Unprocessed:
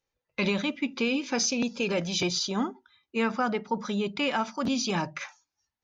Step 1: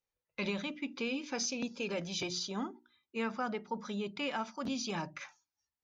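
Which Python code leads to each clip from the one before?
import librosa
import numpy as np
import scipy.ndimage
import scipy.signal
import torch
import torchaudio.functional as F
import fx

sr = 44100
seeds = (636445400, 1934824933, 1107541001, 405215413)

y = fx.hum_notches(x, sr, base_hz=60, count=6)
y = y * 10.0 ** (-8.5 / 20.0)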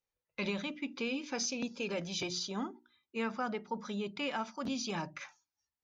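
y = x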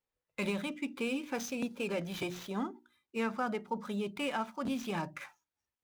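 y = scipy.ndimage.median_filter(x, 9, mode='constant')
y = y * 10.0 ** (2.0 / 20.0)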